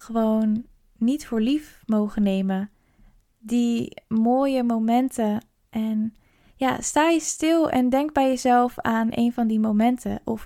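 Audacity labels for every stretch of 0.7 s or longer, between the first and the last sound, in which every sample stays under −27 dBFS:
2.640000	3.490000	silence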